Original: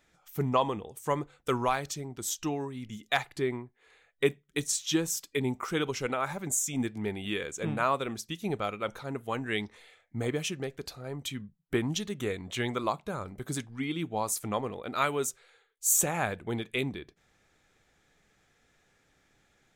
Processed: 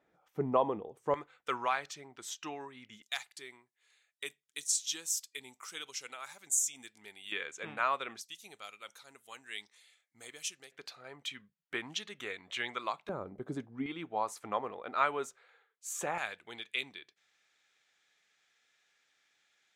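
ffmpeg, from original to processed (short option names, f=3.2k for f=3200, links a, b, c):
-af "asetnsamples=n=441:p=0,asendcmd='1.14 bandpass f 1800;3.02 bandpass f 7200;7.32 bandpass f 2000;8.21 bandpass f 7700;10.72 bandpass f 2200;13.09 bandpass f 450;13.86 bandpass f 1100;16.18 bandpass f 3600',bandpass=f=510:t=q:w=0.77:csg=0"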